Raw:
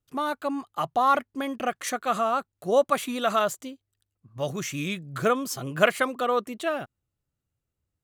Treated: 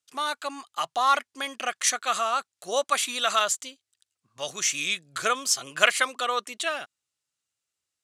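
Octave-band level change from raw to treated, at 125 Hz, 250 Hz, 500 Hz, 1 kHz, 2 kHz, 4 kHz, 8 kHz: −17.0, −12.5, −6.0, −0.5, +3.5, +8.5, +10.5 decibels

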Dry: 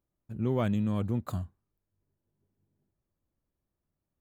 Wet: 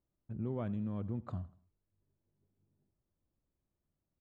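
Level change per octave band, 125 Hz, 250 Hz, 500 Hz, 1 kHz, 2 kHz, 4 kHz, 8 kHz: −8.0 dB, −8.5 dB, −9.5 dB, −10.5 dB, −14.0 dB, below −15 dB, can't be measured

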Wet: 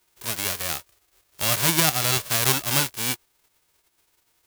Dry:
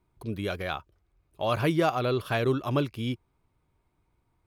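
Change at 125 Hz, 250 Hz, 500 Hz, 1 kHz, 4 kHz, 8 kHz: +0.5, −3.0, −5.0, +1.5, +13.5, +29.0 decibels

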